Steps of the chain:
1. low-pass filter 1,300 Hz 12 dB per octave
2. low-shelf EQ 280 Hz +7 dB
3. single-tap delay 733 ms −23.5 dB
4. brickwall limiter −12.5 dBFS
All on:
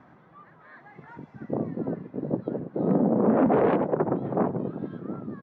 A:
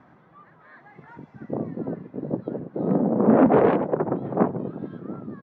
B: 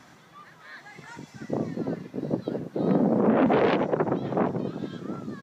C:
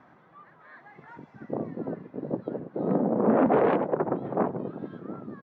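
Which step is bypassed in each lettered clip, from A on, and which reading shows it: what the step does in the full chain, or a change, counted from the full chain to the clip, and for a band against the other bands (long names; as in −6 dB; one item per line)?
4, change in crest factor +5.0 dB
1, 2 kHz band +5.5 dB
2, 125 Hz band −4.5 dB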